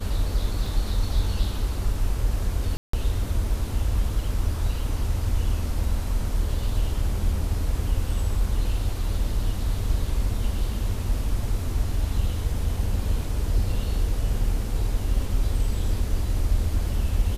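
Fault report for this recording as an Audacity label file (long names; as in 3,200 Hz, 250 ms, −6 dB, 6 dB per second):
0.660000	0.660000	drop-out 2.7 ms
2.770000	2.930000	drop-out 164 ms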